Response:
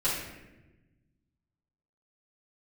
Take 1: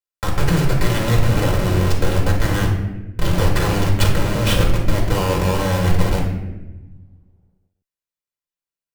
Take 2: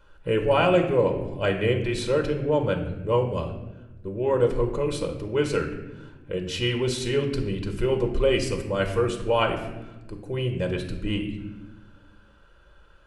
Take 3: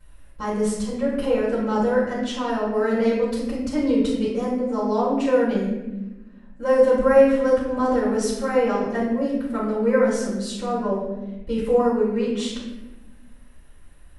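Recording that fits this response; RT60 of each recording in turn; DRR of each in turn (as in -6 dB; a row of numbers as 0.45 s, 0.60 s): 3; 1.1 s, 1.1 s, 1.1 s; -1.5 dB, 3.5 dB, -11.0 dB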